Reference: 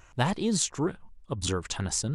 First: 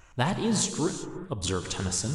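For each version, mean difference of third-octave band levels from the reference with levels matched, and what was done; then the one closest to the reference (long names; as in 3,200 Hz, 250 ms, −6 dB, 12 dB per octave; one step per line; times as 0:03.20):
6.0 dB: reverb whose tail is shaped and stops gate 410 ms flat, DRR 7 dB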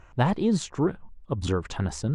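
3.5 dB: low-pass filter 1,300 Hz 6 dB per octave
level +4.5 dB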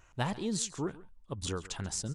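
2.0 dB: single-tap delay 138 ms −19 dB
level −6.5 dB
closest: third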